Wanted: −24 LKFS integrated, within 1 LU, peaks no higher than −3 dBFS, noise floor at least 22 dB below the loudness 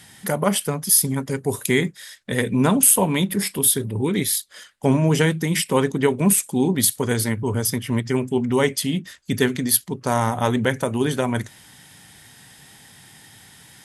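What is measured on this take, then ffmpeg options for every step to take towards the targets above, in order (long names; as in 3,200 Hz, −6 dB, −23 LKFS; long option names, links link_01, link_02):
integrated loudness −20.5 LKFS; sample peak −1.0 dBFS; target loudness −24.0 LKFS
→ -af "volume=-3.5dB"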